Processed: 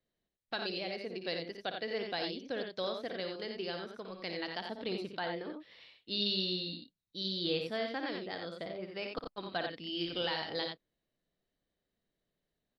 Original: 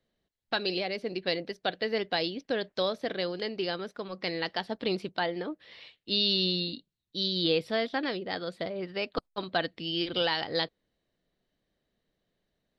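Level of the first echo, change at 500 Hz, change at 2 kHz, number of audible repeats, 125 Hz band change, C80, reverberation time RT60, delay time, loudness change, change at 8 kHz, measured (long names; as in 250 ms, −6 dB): −8.0 dB, −6.5 dB, −6.5 dB, 2, −6.5 dB, no reverb audible, no reverb audible, 58 ms, −6.5 dB, can't be measured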